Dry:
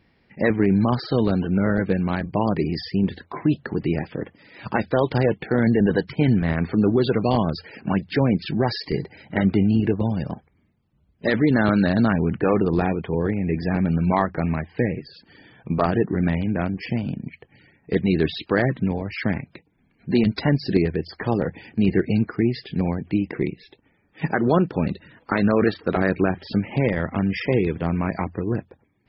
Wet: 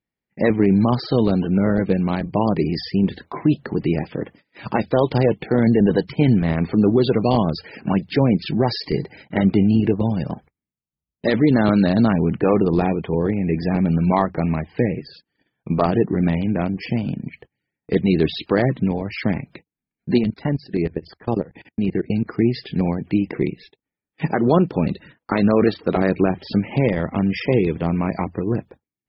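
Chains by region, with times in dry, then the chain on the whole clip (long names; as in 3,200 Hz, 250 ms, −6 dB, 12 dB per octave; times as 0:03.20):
0:20.18–0:22.26: output level in coarse steps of 22 dB + high-frequency loss of the air 120 metres
whole clip: dynamic equaliser 1,600 Hz, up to −7 dB, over −44 dBFS, Q 2.3; noise gate −45 dBFS, range −29 dB; parametric band 90 Hz −5.5 dB 0.31 octaves; level +3 dB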